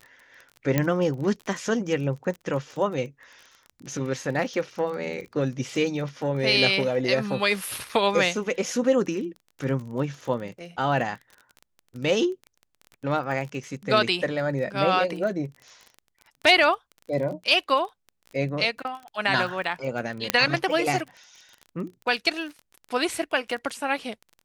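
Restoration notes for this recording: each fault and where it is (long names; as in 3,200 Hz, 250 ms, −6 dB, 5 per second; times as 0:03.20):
surface crackle 24 per second −34 dBFS
0:00.78: click −8 dBFS
0:20.30: click −3 dBFS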